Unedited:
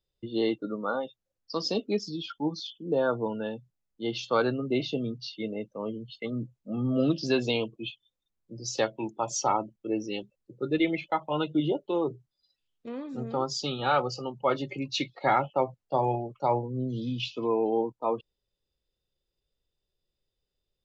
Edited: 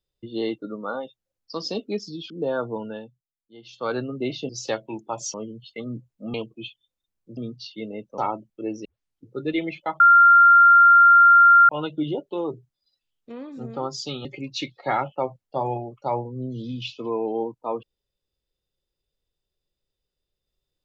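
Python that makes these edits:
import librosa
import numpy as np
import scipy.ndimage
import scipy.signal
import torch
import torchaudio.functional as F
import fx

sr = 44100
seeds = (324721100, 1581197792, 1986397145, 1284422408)

y = fx.edit(x, sr, fx.cut(start_s=2.3, length_s=0.5),
    fx.fade_down_up(start_s=3.37, length_s=1.12, db=-15.5, fade_s=0.36),
    fx.swap(start_s=4.99, length_s=0.81, other_s=8.59, other_length_s=0.85),
    fx.cut(start_s=6.8, length_s=0.76),
    fx.tape_start(start_s=10.11, length_s=0.46),
    fx.insert_tone(at_s=11.26, length_s=1.69, hz=1390.0, db=-9.0),
    fx.cut(start_s=13.82, length_s=0.81), tone=tone)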